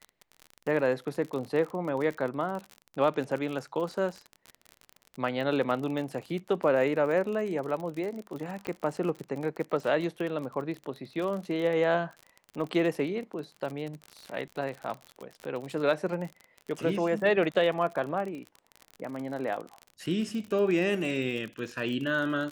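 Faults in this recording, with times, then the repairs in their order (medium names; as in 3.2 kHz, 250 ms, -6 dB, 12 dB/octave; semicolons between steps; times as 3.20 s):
crackle 43 per s -34 dBFS
8.67 s: pop -20 dBFS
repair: de-click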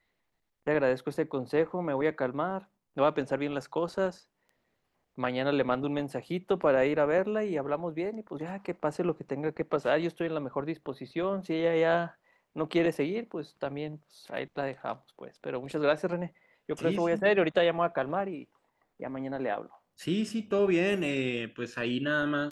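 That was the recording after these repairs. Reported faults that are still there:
nothing left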